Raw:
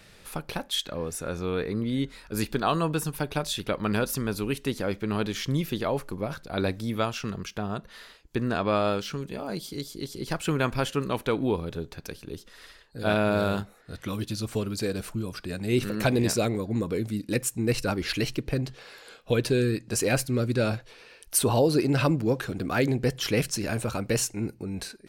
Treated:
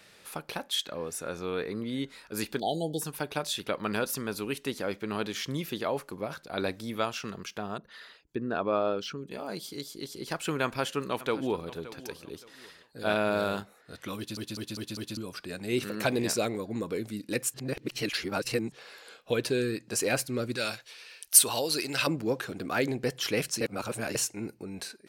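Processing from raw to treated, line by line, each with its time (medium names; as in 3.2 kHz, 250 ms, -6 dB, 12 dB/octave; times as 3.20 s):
2.60–3.01 s: spectral selection erased 880–3000 Hz
7.78–9.31 s: resonances exaggerated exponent 1.5
10.63–11.68 s: echo throw 570 ms, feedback 30%, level -16 dB
14.17 s: stutter in place 0.20 s, 5 plays
17.54–18.72 s: reverse
20.56–22.07 s: tilt shelf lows -8.5 dB, about 1.4 kHz
23.61–24.15 s: reverse
whole clip: high-pass 310 Hz 6 dB/octave; trim -1.5 dB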